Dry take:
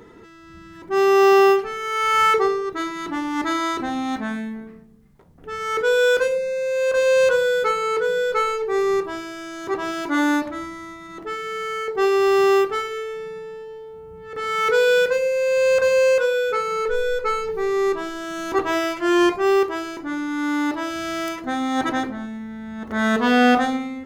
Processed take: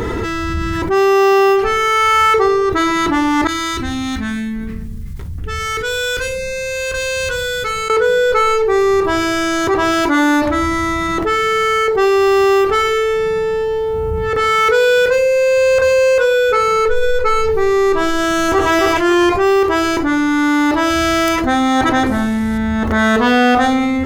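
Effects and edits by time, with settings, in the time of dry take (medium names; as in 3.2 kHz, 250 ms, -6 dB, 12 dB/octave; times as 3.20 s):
3.47–7.90 s: amplifier tone stack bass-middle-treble 6-0-2
18.21–18.70 s: echo throw 270 ms, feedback 25%, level -3.5 dB
22.06–22.58 s: CVSD coder 64 kbps
whole clip: resonant low shelf 120 Hz +8 dB, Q 1.5; level flattener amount 70%; trim +2.5 dB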